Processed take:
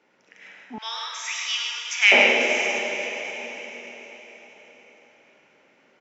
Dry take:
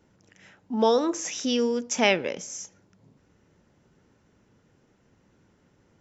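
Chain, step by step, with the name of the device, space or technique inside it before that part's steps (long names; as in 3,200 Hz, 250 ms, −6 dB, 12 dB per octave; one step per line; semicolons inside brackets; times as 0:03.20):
station announcement (band-pass filter 430–4,800 Hz; parametric band 2,300 Hz +9 dB 0.53 octaves; loudspeakers that aren't time-aligned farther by 20 metres −10 dB, 36 metres −5 dB, 53 metres −6 dB; convolution reverb RT60 4.8 s, pre-delay 3 ms, DRR 2 dB)
0:00.78–0:02.12: high-pass filter 1,400 Hz 24 dB per octave
level +2 dB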